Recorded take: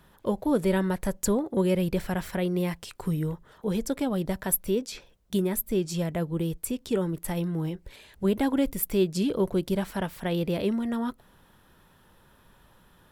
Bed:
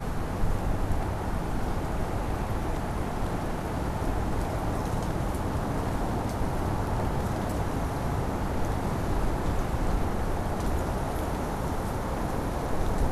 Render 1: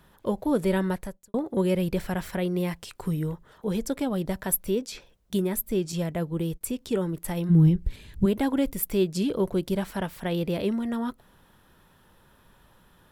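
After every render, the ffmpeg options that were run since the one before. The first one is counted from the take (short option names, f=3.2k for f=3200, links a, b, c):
-filter_complex "[0:a]asettb=1/sr,asplit=3[a][b][c];[a]atrim=end=5.924[d];[b]atrim=start=5.92:end=6.61,asetpts=PTS-STARTPTS,afade=t=in:d=0.004:c=qsin,afade=t=out:st=0.686:d=0.004:c=qsin,agate=range=-33dB:threshold=-36dB:ratio=3:release=100:detection=peak[e];[c]atrim=start=6.606[f];[d][e]acrossfade=d=0.004:c1=hsin:c2=qsin[g];[g][f]acrossfade=d=0.004:c1=qsin:c2=hsin,asplit=3[h][i][j];[h]afade=t=out:st=7.49:d=0.02[k];[i]asubboost=boost=8:cutoff=220,afade=t=in:st=7.49:d=0.02,afade=t=out:st=8.24:d=0.02[l];[j]afade=t=in:st=8.24:d=0.02[m];[k][l][m]amix=inputs=3:normalize=0,asplit=2[n][o];[n]atrim=end=1.34,asetpts=PTS-STARTPTS,afade=t=out:st=0.93:d=0.41:c=qua[p];[o]atrim=start=1.34,asetpts=PTS-STARTPTS,afade=t=in:d=0.004:c=hsin[q];[p][q]concat=n=2:v=0:a=1"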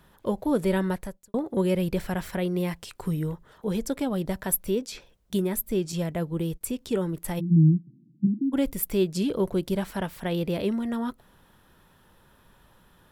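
-filter_complex "[0:a]asplit=3[a][b][c];[a]afade=t=out:st=7.39:d=0.02[d];[b]asuperpass=centerf=210:order=20:qfactor=1,afade=t=in:st=7.39:d=0.02,afade=t=out:st=8.52:d=0.02[e];[c]afade=t=in:st=8.52:d=0.02[f];[d][e][f]amix=inputs=3:normalize=0"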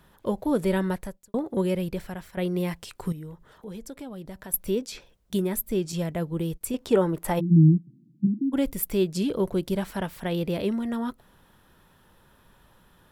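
-filter_complex "[0:a]asettb=1/sr,asplit=3[a][b][c];[a]atrim=end=3.124[d];[b]atrim=start=3.12:end=4.54,asetpts=PTS-STARTPTS,afade=t=in:d=0.004:c=qsin,afade=t=out:st=1.416:d=0.004:c=qsin,acompressor=threshold=-44dB:ratio=2:attack=3.2:release=140:knee=1:detection=peak[e];[c]atrim=start=4.536[f];[d][e]acrossfade=d=0.004:c1=hsin:c2=qsin[g];[g][f]acrossfade=d=0.004:c1=qsin:c2=hsin,asettb=1/sr,asplit=3[h][i][j];[h]atrim=end=6.744[k];[i]atrim=start=6.74:end=7.78,asetpts=PTS-STARTPTS,afade=t=in:d=0.004:c=qsin,afade=t=out:st=1.036:d=0.004:c=qsin,equalizer=f=810:t=o:w=2.5:g=10[l];[j]atrim=start=7.776[m];[k][l]acrossfade=d=0.004:c1=hsin:c2=qsin[n];[n][m]acrossfade=d=0.004:c1=qsin:c2=hsin,asplit=2[o][p];[o]atrim=end=2.37,asetpts=PTS-STARTPTS,afade=t=out:st=1.52:d=0.85:silence=0.237137[q];[p]atrim=start=2.37,asetpts=PTS-STARTPTS,afade=t=in:d=0.004:c=hsin:silence=0.237137[r];[q][r]concat=n=2:v=0:a=1"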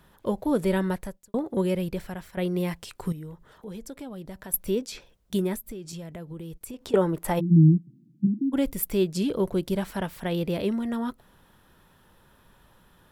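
-filter_complex "[0:a]asettb=1/sr,asplit=3[a][b][c];[a]atrim=end=5.554[d];[b]atrim=start=5.55:end=6.94,asetpts=PTS-STARTPTS,afade=t=in:d=0.004:c=qsin,afade=t=out:st=1.386:d=0.004:c=qsin,acompressor=threshold=-35dB:ratio=6:attack=3.2:release=140:knee=1:detection=peak[e];[c]atrim=start=6.936[f];[d][e]acrossfade=d=0.004:c1=hsin:c2=qsin[g];[g][f]acrossfade=d=0.004:c1=qsin:c2=hsin"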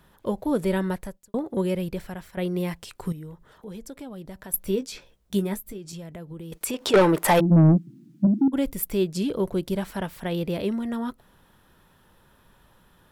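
-filter_complex "[0:a]asettb=1/sr,asplit=3[a][b][c];[a]atrim=end=4.564[d];[b]atrim=start=4.56:end=5.78,asetpts=PTS-STARTPTS,afade=t=in:d=0.004:c=qsin,afade=t=out:st=1.216:d=0.004:c=qsin,asplit=2[e][f];[f]adelay=15,volume=-7.5dB[g];[e][g]amix=inputs=2:normalize=0,atrim=end_sample=53802[h];[c]atrim=start=5.776[i];[d][h]acrossfade=d=0.004:c1=hsin:c2=qsin[j];[j][i]acrossfade=d=0.004:c1=qsin:c2=hsin,asettb=1/sr,asplit=3[k][l][m];[k]atrim=end=6.524[n];[l]atrim=start=6.52:end=8.48,asetpts=PTS-STARTPTS,afade=t=in:d=0.004:c=qsin,afade=t=out:st=1.956:d=0.004:c=qsin,asplit=2[o][p];[p]highpass=f=720:p=1,volume=23dB,asoftclip=type=tanh:threshold=-8dB[q];[o][q]amix=inputs=2:normalize=0,lowpass=f=6.5k:p=1,volume=-6dB[r];[m]atrim=start=8.476[s];[n][r]acrossfade=d=0.004:c1=hsin:c2=qsin[t];[t][s]acrossfade=d=0.004:c1=qsin:c2=hsin"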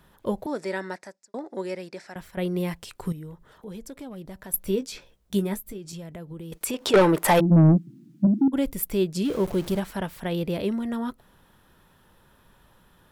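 -filter_complex "[0:a]asettb=1/sr,asplit=3[a][b][c];[a]atrim=end=0.464[d];[b]atrim=start=0.46:end=2.16,asetpts=PTS-STARTPTS,afade=t=in:d=0.004:c=qsin,afade=t=out:st=1.696:d=0.004:c=qsin,highpass=410,equalizer=f=480:t=q:w=4:g=-6,equalizer=f=1.1k:t=q:w=4:g=-5,equalizer=f=1.9k:t=q:w=4:g=4,equalizer=f=3.1k:t=q:w=4:g=-10,equalizer=f=5.2k:t=q:w=4:g=8,lowpass=f=8.2k:w=0.5412,lowpass=f=8.2k:w=1.3066[e];[c]atrim=start=2.156[f];[d][e]acrossfade=d=0.004:c1=hsin:c2=qsin[g];[g][f]acrossfade=d=0.004:c1=qsin:c2=hsin,asplit=3[h][i][j];[h]afade=t=out:st=3.85:d=0.02[k];[i]asoftclip=type=hard:threshold=-32dB,afade=t=in:st=3.85:d=0.02,afade=t=out:st=4.52:d=0.02[l];[j]afade=t=in:st=4.52:d=0.02[m];[k][l][m]amix=inputs=3:normalize=0,asettb=1/sr,asplit=3[n][o][p];[n]atrim=end=9.254[q];[o]atrim=start=9.25:end=9.8,asetpts=PTS-STARTPTS,afade=t=in:d=0.004:c=qsin,afade=t=out:st=0.546:d=0.004:c=qsin,aeval=exprs='val(0)+0.5*0.0188*sgn(val(0))':c=same[r];[p]atrim=start=9.796[s];[q][r]acrossfade=d=0.004:c1=hsin:c2=qsin[t];[t][s]acrossfade=d=0.004:c1=qsin:c2=hsin"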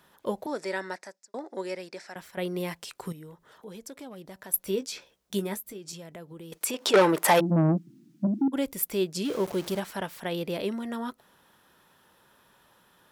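-af "highpass=f=380:p=1,equalizer=f=5.7k:t=o:w=0.77:g=2.5"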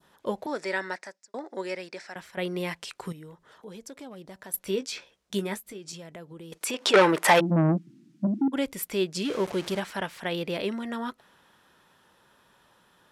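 -af "adynamicequalizer=threshold=0.00562:dfrequency=2100:dqfactor=0.75:tfrequency=2100:tqfactor=0.75:attack=5:release=100:ratio=0.375:range=2.5:mode=boostabove:tftype=bell,lowpass=10k"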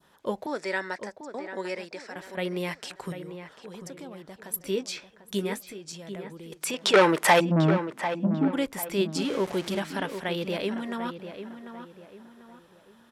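-filter_complex "[0:a]asplit=2[a][b];[b]adelay=744,lowpass=f=2.3k:p=1,volume=-9.5dB,asplit=2[c][d];[d]adelay=744,lowpass=f=2.3k:p=1,volume=0.38,asplit=2[e][f];[f]adelay=744,lowpass=f=2.3k:p=1,volume=0.38,asplit=2[g][h];[h]adelay=744,lowpass=f=2.3k:p=1,volume=0.38[i];[a][c][e][g][i]amix=inputs=5:normalize=0"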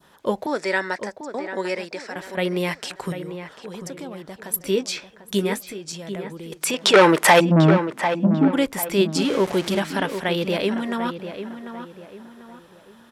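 -af "volume=7dB,alimiter=limit=-2dB:level=0:latency=1"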